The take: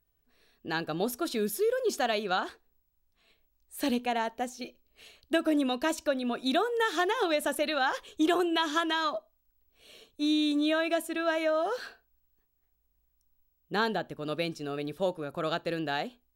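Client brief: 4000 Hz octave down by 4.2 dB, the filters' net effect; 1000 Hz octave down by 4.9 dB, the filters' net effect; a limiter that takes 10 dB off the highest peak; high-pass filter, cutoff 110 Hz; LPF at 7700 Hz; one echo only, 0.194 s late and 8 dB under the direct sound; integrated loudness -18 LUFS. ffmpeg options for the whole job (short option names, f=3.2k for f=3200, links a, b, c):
-af "highpass=110,lowpass=7.7k,equalizer=f=1k:t=o:g=-7,equalizer=f=4k:t=o:g=-4.5,alimiter=level_in=3dB:limit=-24dB:level=0:latency=1,volume=-3dB,aecho=1:1:194:0.398,volume=17.5dB"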